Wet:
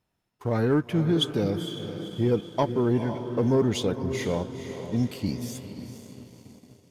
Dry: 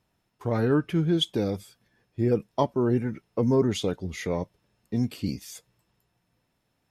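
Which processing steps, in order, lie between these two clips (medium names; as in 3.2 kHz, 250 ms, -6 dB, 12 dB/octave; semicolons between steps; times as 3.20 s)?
echo that smears into a reverb 487 ms, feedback 52%, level -10 dB; waveshaping leveller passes 1; trim -3 dB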